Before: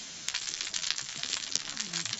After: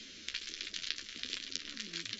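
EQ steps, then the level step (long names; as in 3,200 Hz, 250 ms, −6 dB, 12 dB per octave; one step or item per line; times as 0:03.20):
high-frequency loss of the air 220 metres
parametric band 950 Hz −8.5 dB 1.8 octaves
phaser with its sweep stopped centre 340 Hz, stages 4
+2.5 dB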